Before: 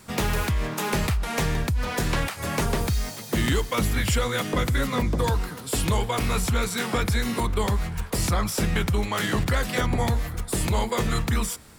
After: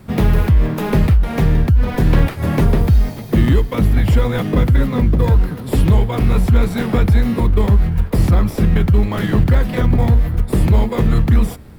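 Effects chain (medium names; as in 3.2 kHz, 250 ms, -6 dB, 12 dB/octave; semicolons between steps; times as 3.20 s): in parallel at -5.5 dB: sample-and-hold 30×; on the sum: bass shelf 390 Hz +9.5 dB; gain riding 0.5 s; peaking EQ 7.3 kHz -11 dB 1.3 oct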